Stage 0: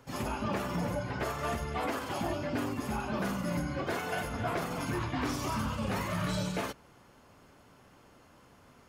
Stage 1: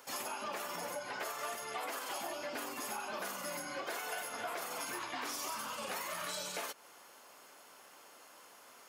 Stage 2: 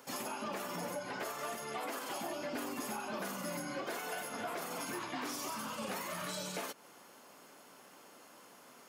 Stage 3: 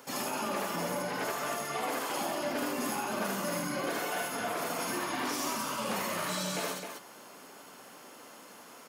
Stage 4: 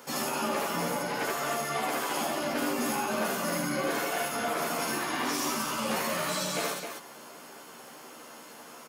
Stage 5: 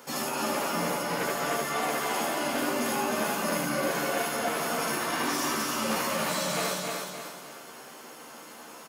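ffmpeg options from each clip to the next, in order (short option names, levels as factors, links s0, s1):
-af "highpass=530,highshelf=f=5500:g=11.5,acompressor=threshold=0.00891:ratio=4,volume=1.33"
-filter_complex "[0:a]equalizer=f=190:t=o:w=2:g=11.5,asplit=2[s0][s1];[s1]volume=44.7,asoftclip=hard,volume=0.0224,volume=0.596[s2];[s0][s2]amix=inputs=2:normalize=0,volume=0.531"
-af "aecho=1:1:75.8|262.4:0.794|0.501,volume=1.58"
-filter_complex "[0:a]asplit=2[s0][s1];[s1]adelay=13,volume=0.631[s2];[s0][s2]amix=inputs=2:normalize=0,volume=1.26"
-af "aecho=1:1:305|610|915|1220|1525:0.631|0.227|0.0818|0.0294|0.0106"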